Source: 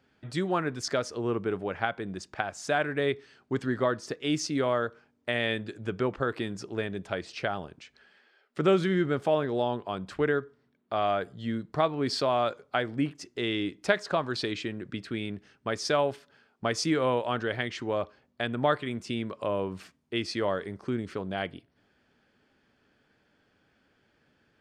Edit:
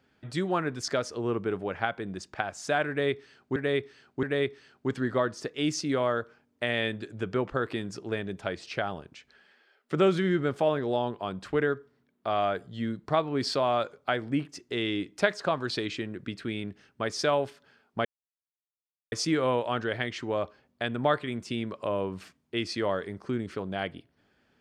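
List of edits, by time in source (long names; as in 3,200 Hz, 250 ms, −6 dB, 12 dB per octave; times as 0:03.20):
0:02.89–0:03.56: repeat, 3 plays
0:16.71: splice in silence 1.07 s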